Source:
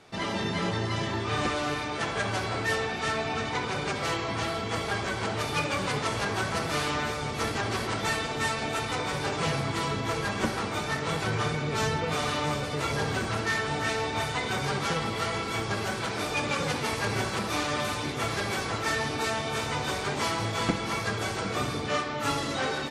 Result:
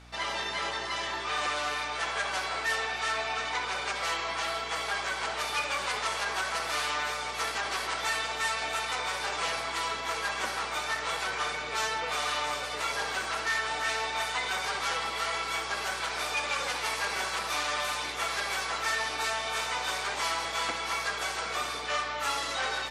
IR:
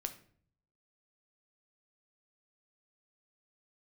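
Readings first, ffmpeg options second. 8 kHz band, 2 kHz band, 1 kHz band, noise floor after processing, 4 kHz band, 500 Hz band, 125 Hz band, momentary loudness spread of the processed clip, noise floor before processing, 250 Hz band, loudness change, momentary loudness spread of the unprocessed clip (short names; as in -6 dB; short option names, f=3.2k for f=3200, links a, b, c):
+1.0 dB, +0.5 dB, -0.5 dB, -36 dBFS, +1.0 dB, -6.5 dB, -19.0 dB, 2 LU, -33 dBFS, -16.0 dB, -1.0 dB, 2 LU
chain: -filter_complex "[0:a]highpass=760,asplit=2[a][b];[b]alimiter=limit=-23.5dB:level=0:latency=1,volume=0dB[c];[a][c]amix=inputs=2:normalize=0,aeval=exprs='val(0)+0.00447*(sin(2*PI*60*n/s)+sin(2*PI*2*60*n/s)/2+sin(2*PI*3*60*n/s)/3+sin(2*PI*4*60*n/s)/4+sin(2*PI*5*60*n/s)/5)':c=same,volume=-4.5dB"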